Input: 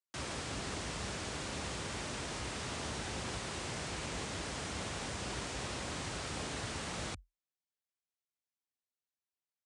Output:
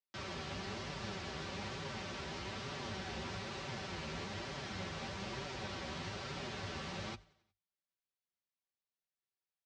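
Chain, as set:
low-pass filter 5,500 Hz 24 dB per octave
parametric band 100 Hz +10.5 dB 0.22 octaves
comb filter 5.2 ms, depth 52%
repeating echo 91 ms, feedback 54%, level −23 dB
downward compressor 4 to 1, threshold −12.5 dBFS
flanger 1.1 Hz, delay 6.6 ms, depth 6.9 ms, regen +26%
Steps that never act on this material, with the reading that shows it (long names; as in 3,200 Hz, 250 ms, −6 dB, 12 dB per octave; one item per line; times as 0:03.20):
downward compressor, threshold −12.5 dBFS: peak of its input −26.5 dBFS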